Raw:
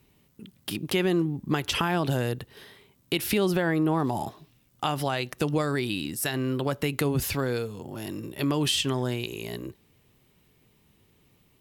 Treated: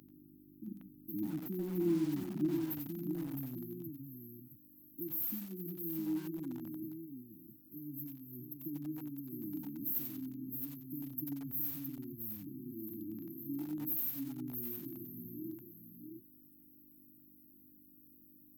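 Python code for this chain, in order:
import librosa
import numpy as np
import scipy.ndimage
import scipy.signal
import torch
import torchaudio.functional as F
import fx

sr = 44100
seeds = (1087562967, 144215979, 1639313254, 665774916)

p1 = fx.tracing_dist(x, sr, depth_ms=0.31)
p2 = fx.dynamic_eq(p1, sr, hz=2400.0, q=2.5, threshold_db=-45.0, ratio=4.0, max_db=3)
p3 = fx.over_compress(p2, sr, threshold_db=-37.0, ratio=-1.0)
p4 = p2 + (p3 * librosa.db_to_amplitude(-1.0))
p5 = fx.stretch_vocoder(p4, sr, factor=1.6)
p6 = fx.dmg_buzz(p5, sr, base_hz=50.0, harmonics=12, level_db=-47.0, tilt_db=-3, odd_only=False)
p7 = fx.filter_sweep_bandpass(p6, sr, from_hz=1100.0, to_hz=2400.0, start_s=2.34, end_s=3.91, q=1.7)
p8 = fx.brickwall_bandstop(p7, sr, low_hz=350.0, high_hz=12000.0)
p9 = fx.tilt_eq(p8, sr, slope=2.5)
p10 = p9 + fx.echo_multitap(p9, sr, ms=(87, 103, 664), db=(-9.5, -14.5, -6.0), dry=0)
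p11 = fx.echo_crushed(p10, sr, ms=91, feedback_pct=55, bits=9, wet_db=-10.5)
y = p11 * librosa.db_to_amplitude(13.5)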